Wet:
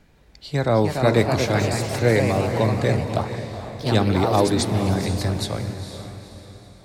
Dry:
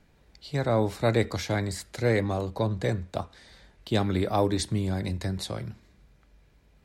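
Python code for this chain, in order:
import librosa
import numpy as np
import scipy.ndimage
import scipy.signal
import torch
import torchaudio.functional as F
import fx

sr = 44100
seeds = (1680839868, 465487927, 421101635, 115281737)

y = fx.echo_diffused(x, sr, ms=478, feedback_pct=43, wet_db=-9)
y = fx.echo_pitch(y, sr, ms=362, semitones=2, count=3, db_per_echo=-6.0)
y = y * librosa.db_to_amplitude(5.5)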